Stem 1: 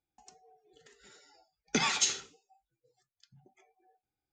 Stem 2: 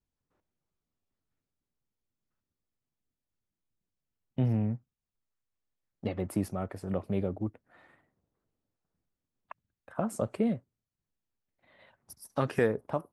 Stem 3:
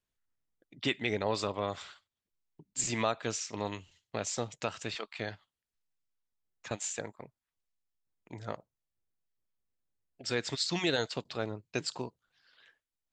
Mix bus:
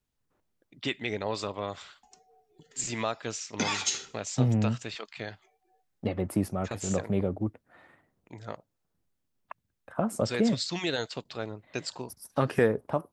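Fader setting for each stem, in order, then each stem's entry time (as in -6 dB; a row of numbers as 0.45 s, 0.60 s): -1.0 dB, +3.0 dB, -0.5 dB; 1.85 s, 0.00 s, 0.00 s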